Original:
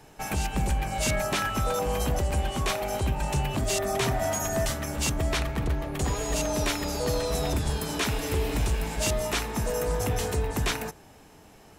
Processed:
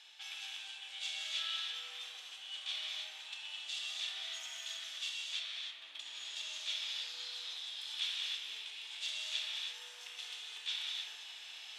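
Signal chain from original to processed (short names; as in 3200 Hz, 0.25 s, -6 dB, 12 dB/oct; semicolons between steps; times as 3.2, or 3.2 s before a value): high shelf 2600 Hz -11.5 dB; notch 3100 Hz, Q 15; reverse; upward compressor, threshold -29 dBFS; reverse; limiter -24.5 dBFS, peak gain reduction 5.5 dB; compressor 1.5:1, threshold -36 dBFS, peak gain reduction 3.5 dB; sine folder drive 4 dB, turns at -26 dBFS; ladder band-pass 3600 Hz, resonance 75%; non-linear reverb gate 0.35 s flat, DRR -3.5 dB; gain +4.5 dB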